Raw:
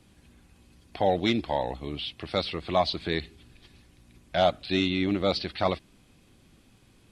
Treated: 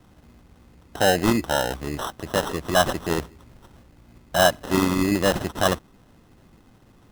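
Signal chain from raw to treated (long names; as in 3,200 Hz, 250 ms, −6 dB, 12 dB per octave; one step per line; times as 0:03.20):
sample-rate reduction 2,300 Hz, jitter 0%
level +5 dB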